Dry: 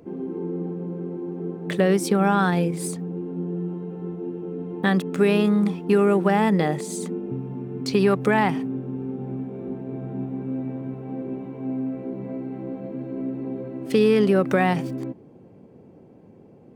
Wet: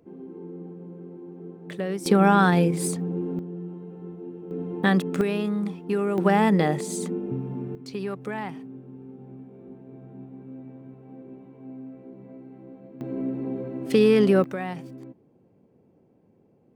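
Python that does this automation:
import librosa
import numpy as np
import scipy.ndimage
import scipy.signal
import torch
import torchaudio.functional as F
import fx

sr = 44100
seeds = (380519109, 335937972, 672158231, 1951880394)

y = fx.gain(x, sr, db=fx.steps((0.0, -10.0), (2.06, 2.0), (3.39, -7.0), (4.51, 0.0), (5.21, -7.0), (6.18, 0.0), (7.75, -12.5), (13.01, 0.0), (14.44, -11.5)))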